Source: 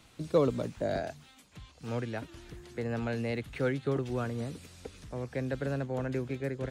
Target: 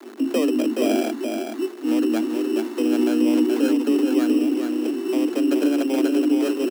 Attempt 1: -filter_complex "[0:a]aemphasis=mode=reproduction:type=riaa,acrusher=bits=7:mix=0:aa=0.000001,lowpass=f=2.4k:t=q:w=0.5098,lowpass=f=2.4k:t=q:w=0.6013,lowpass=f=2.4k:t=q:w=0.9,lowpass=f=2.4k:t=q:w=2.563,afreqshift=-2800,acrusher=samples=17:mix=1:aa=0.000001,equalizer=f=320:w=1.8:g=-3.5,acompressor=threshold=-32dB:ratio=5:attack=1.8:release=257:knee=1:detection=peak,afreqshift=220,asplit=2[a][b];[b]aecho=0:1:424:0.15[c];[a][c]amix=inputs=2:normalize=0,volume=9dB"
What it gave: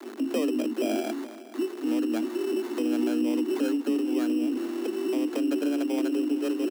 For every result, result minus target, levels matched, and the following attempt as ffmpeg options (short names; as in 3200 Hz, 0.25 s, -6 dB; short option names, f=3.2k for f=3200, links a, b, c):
echo-to-direct -11.5 dB; compressor: peak gain reduction +6 dB
-filter_complex "[0:a]aemphasis=mode=reproduction:type=riaa,acrusher=bits=7:mix=0:aa=0.000001,lowpass=f=2.4k:t=q:w=0.5098,lowpass=f=2.4k:t=q:w=0.6013,lowpass=f=2.4k:t=q:w=0.9,lowpass=f=2.4k:t=q:w=2.563,afreqshift=-2800,acrusher=samples=17:mix=1:aa=0.000001,equalizer=f=320:w=1.8:g=-3.5,acompressor=threshold=-32dB:ratio=5:attack=1.8:release=257:knee=1:detection=peak,afreqshift=220,asplit=2[a][b];[b]aecho=0:1:424:0.562[c];[a][c]amix=inputs=2:normalize=0,volume=9dB"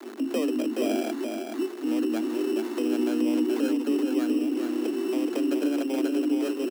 compressor: peak gain reduction +6 dB
-filter_complex "[0:a]aemphasis=mode=reproduction:type=riaa,acrusher=bits=7:mix=0:aa=0.000001,lowpass=f=2.4k:t=q:w=0.5098,lowpass=f=2.4k:t=q:w=0.6013,lowpass=f=2.4k:t=q:w=0.9,lowpass=f=2.4k:t=q:w=2.563,afreqshift=-2800,acrusher=samples=17:mix=1:aa=0.000001,equalizer=f=320:w=1.8:g=-3.5,acompressor=threshold=-24.5dB:ratio=5:attack=1.8:release=257:knee=1:detection=peak,afreqshift=220,asplit=2[a][b];[b]aecho=0:1:424:0.562[c];[a][c]amix=inputs=2:normalize=0,volume=9dB"